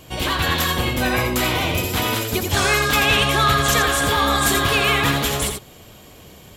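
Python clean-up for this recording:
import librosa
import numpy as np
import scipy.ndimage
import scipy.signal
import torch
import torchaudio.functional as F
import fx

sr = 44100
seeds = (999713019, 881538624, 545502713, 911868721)

y = fx.fix_declip(x, sr, threshold_db=-8.0)
y = fx.fix_echo_inverse(y, sr, delay_ms=84, level_db=-6.5)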